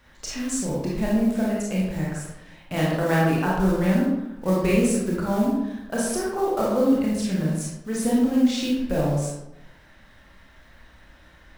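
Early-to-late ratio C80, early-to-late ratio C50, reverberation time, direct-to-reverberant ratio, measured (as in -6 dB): 3.0 dB, -0.5 dB, 0.90 s, -5.5 dB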